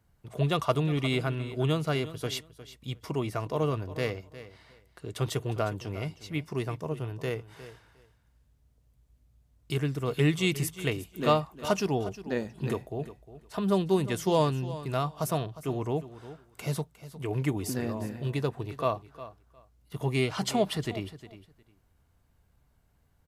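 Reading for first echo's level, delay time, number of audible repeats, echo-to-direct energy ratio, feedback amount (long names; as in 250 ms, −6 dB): −15.0 dB, 357 ms, 2, −15.0 dB, 17%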